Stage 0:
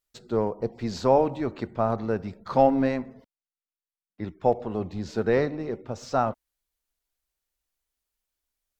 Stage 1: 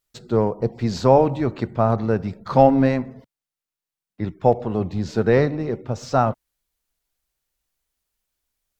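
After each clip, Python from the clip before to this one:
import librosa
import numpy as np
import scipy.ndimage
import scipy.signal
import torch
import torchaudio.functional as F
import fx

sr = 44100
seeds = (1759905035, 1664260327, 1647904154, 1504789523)

y = fx.peak_eq(x, sr, hz=130.0, db=6.5, octaves=0.93)
y = y * librosa.db_to_amplitude(5.0)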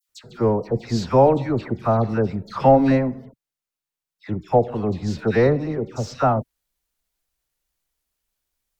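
y = fx.dispersion(x, sr, late='lows', ms=95.0, hz=1700.0)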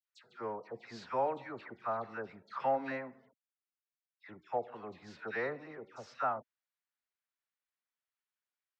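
y = fx.bandpass_q(x, sr, hz=1600.0, q=1.2)
y = y * librosa.db_to_amplitude(-8.5)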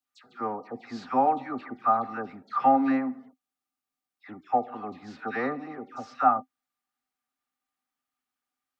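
y = fx.small_body(x, sr, hz=(260.0, 770.0, 1200.0), ring_ms=80, db=17)
y = y * librosa.db_to_amplitude(4.0)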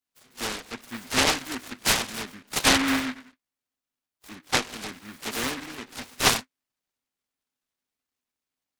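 y = fx.noise_mod_delay(x, sr, seeds[0], noise_hz=1600.0, depth_ms=0.39)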